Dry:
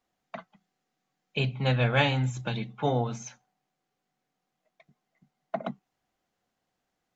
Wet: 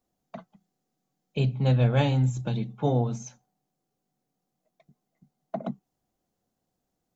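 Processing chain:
parametric band 2,000 Hz −14.5 dB 2.7 octaves
level +5 dB

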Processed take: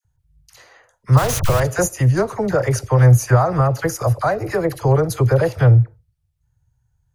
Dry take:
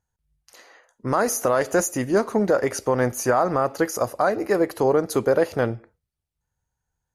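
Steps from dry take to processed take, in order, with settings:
0:01.17–0:01.60: hold until the input has moved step −21 dBFS
low shelf with overshoot 170 Hz +11.5 dB, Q 3
all-pass dispersion lows, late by 49 ms, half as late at 1,100 Hz
level +2.5 dB

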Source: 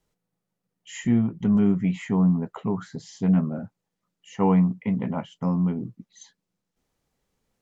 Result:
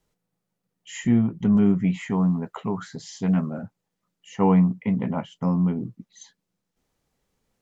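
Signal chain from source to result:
0:02.10–0:03.63: tilt shelving filter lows −3.5 dB, about 770 Hz
level +1.5 dB

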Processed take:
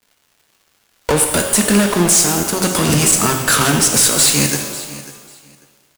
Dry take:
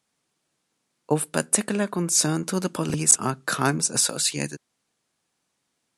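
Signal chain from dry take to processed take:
camcorder AGC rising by 33 dB per second
high-shelf EQ 3,800 Hz +8 dB
0:02.17–0:02.61: output level in coarse steps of 14 dB
fuzz pedal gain 25 dB, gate −31 dBFS
surface crackle 310 per second −45 dBFS
repeating echo 544 ms, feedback 19%, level −17 dB
reverb with rising layers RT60 1.2 s, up +12 semitones, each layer −8 dB, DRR 3.5 dB
level +2.5 dB

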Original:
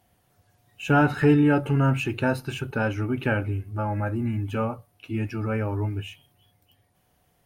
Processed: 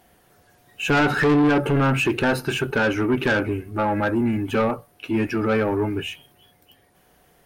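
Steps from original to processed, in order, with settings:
graphic EQ with 15 bands 100 Hz −11 dB, 400 Hz +5 dB, 1,600 Hz +4 dB
in parallel at −1 dB: brickwall limiter −15 dBFS, peak gain reduction 8.5 dB
on the sum: soft clipping −17.5 dBFS, distortion −8 dB
level +3 dB

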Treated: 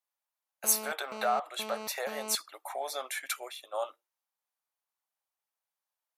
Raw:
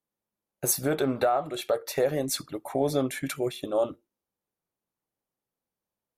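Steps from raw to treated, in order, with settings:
high-pass filter 740 Hz 24 dB per octave
0:00.64–0:02.35: phone interference −41 dBFS
0:03.26–0:03.74: multiband upward and downward expander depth 100%

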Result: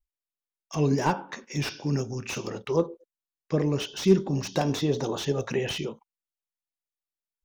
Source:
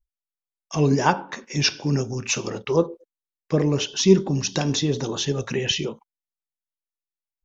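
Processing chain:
0:04.32–0:05.70: dynamic equaliser 670 Hz, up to +7 dB, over −40 dBFS, Q 0.95
slew-rate limiting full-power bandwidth 180 Hz
level −4.5 dB

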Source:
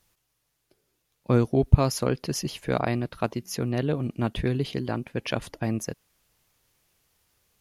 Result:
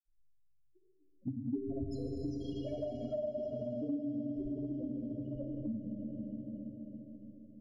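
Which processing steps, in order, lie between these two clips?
in parallel at +2.5 dB: output level in coarse steps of 11 dB
on the sum: spectral peaks only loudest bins 2
mains-hum notches 50/100/150/200/250/300/350/400/450 Hz
stiff-string resonator 300 Hz, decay 0.26 s, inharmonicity 0.002
hollow resonant body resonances 270/400 Hz, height 12 dB
dynamic equaliser 270 Hz, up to −4 dB, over −49 dBFS
low-pass filter sweep 6,200 Hz → 190 Hz, 0:02.58–0:06.05
granular cloud 100 ms, grains 20 per second, pitch spread up and down by 0 semitones
convolution reverb RT60 4.8 s, pre-delay 8 ms, DRR 0.5 dB
downward compressor 4 to 1, threshold −54 dBFS, peak gain reduction 20 dB
level +16.5 dB

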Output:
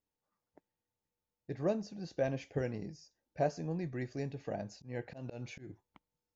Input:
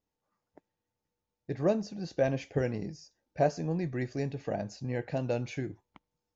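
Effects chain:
0:04.74–0:05.69: volume swells 153 ms
level −5.5 dB

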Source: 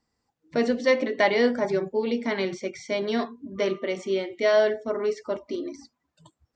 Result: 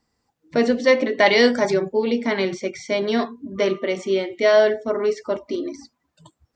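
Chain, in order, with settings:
0:01.26–0:01.74: high-shelf EQ 2,800 Hz +11.5 dB
level +5 dB

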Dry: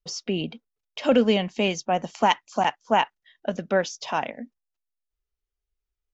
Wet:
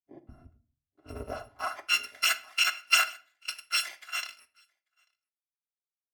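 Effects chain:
samples in bit-reversed order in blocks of 256 samples
in parallel at −9 dB: hard clipping −17 dBFS, distortion −11 dB
on the sum: band-pass filter sweep 240 Hz → 1,800 Hz, 0:00.88–0:01.95
single-tap delay 841 ms −18 dB
on a send at −9.5 dB: convolution reverb RT60 0.60 s, pre-delay 3 ms
on the sum: multiband upward and downward expander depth 100%
level +4.5 dB

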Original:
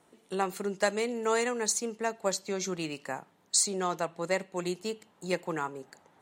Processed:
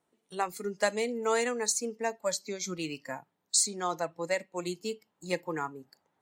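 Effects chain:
noise reduction from a noise print of the clip's start 14 dB

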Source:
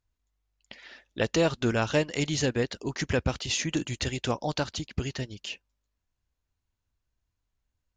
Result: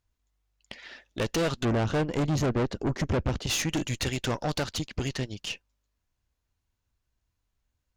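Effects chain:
0:01.65–0:03.47: tilt shelving filter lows +8.5 dB, about 900 Hz
tube saturation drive 29 dB, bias 0.65
level +6 dB

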